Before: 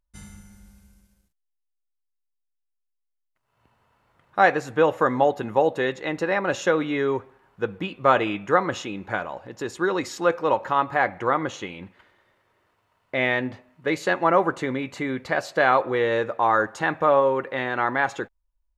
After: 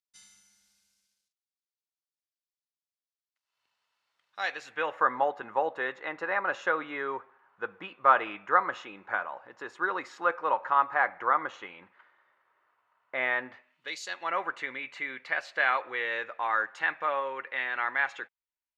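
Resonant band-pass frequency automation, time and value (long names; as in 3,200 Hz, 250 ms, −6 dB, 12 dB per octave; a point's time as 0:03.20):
resonant band-pass, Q 1.5
0:04.41 4,700 Hz
0:05.05 1,300 Hz
0:13.44 1,300 Hz
0:14.05 5,900 Hz
0:14.38 2,200 Hz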